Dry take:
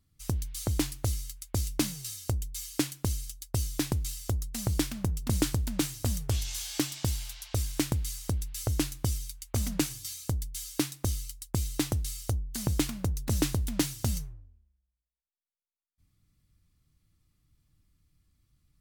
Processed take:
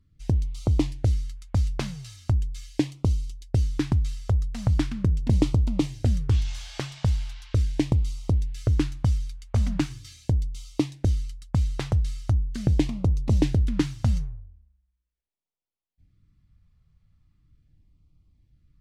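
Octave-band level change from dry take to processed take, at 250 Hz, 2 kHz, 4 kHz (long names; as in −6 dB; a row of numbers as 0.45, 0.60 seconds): +5.0, 0.0, −3.5 decibels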